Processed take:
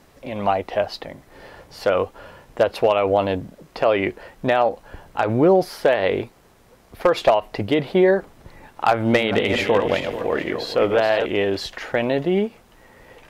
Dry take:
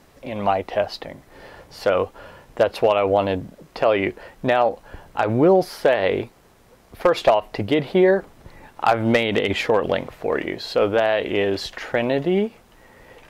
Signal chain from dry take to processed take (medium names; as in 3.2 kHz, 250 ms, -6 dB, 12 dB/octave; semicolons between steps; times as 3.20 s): 8.91–11.26 s: backward echo that repeats 219 ms, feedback 50%, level -7 dB